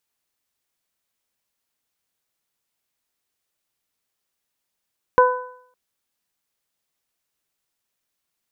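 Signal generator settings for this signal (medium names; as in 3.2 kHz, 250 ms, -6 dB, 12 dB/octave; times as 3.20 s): additive tone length 0.56 s, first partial 501 Hz, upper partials 1/-8 dB, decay 0.62 s, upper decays 0.61/0.62 s, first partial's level -11 dB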